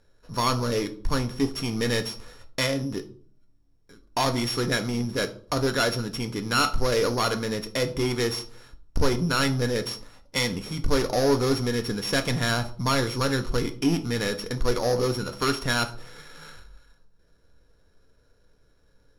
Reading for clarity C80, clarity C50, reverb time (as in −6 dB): 20.0 dB, 15.0 dB, 0.50 s